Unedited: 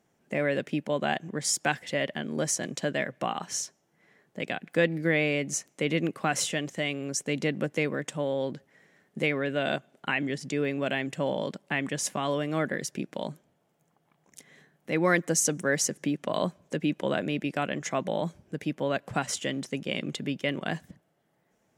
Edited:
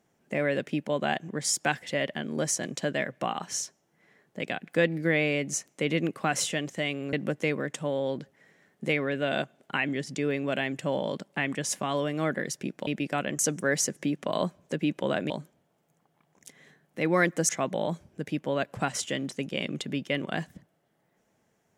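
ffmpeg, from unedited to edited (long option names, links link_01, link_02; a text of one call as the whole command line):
ffmpeg -i in.wav -filter_complex "[0:a]asplit=6[link_01][link_02][link_03][link_04][link_05][link_06];[link_01]atrim=end=7.132[link_07];[link_02]atrim=start=7.468:end=13.212[link_08];[link_03]atrim=start=17.308:end=17.832[link_09];[link_04]atrim=start=15.398:end=17.312[link_10];[link_05]atrim=start=13.208:end=15.402[link_11];[link_06]atrim=start=17.828[link_12];[link_07][link_08]acrossfade=duration=0.004:curve1=hsin:curve2=hsin[link_13];[link_13][link_09]acrossfade=duration=0.004:curve1=hsin:curve2=hsin[link_14];[link_14][link_10]acrossfade=duration=0.004:curve1=hsin:curve2=hsin[link_15];[link_15][link_11]acrossfade=duration=0.004:curve1=hsin:curve2=hsin[link_16];[link_16][link_12]acrossfade=duration=0.004:curve1=hsin:curve2=hsin" out.wav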